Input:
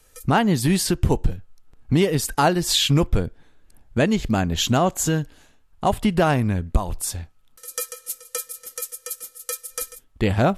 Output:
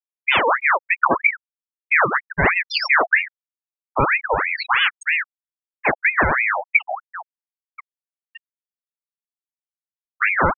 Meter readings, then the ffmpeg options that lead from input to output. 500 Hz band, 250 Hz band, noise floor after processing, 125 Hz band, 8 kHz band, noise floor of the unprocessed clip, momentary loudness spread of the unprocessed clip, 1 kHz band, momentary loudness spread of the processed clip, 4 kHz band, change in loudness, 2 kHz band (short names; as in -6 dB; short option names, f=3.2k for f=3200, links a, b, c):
-2.5 dB, -11.0 dB, under -85 dBFS, -12.0 dB, under -25 dB, -57 dBFS, 13 LU, +4.5 dB, 12 LU, -2.5 dB, +4.0 dB, +14.0 dB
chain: -af "afftfilt=real='re*gte(hypot(re,im),0.355)':imag='im*gte(hypot(re,im),0.355)':win_size=1024:overlap=0.75,aeval=exprs='val(0)*sin(2*PI*1500*n/s+1500*0.55/3.1*sin(2*PI*3.1*n/s))':c=same,volume=4.5dB"